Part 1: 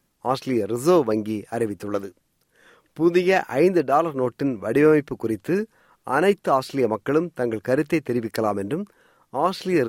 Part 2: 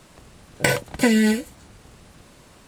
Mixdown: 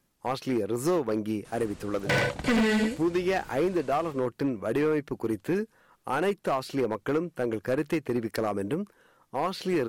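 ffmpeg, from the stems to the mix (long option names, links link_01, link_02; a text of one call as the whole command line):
ffmpeg -i stem1.wav -i stem2.wav -filter_complex "[0:a]acompressor=threshold=-19dB:ratio=4,volume=-3dB[link_01];[1:a]acrossover=split=4000[link_02][link_03];[link_03]acompressor=threshold=-41dB:ratio=4:attack=1:release=60[link_04];[link_02][link_04]amix=inputs=2:normalize=0,lowpass=9100,adelay=1450,volume=-1.5dB,asplit=2[link_05][link_06];[link_06]volume=-3.5dB,aecho=0:1:85:1[link_07];[link_01][link_05][link_07]amix=inputs=3:normalize=0,volume=20.5dB,asoftclip=hard,volume=-20.5dB" out.wav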